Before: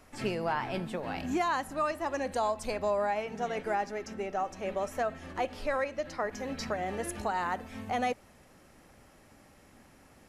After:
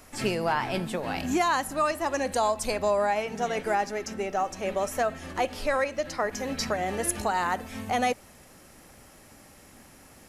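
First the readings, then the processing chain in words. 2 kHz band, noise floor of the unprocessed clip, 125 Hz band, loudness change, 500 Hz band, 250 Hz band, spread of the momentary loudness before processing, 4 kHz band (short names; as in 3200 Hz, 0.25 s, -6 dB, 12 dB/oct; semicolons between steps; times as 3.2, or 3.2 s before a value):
+5.5 dB, -59 dBFS, +4.5 dB, +5.0 dB, +4.5 dB, +4.5 dB, 5 LU, +8.0 dB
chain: high shelf 5000 Hz +9.5 dB; gain +4.5 dB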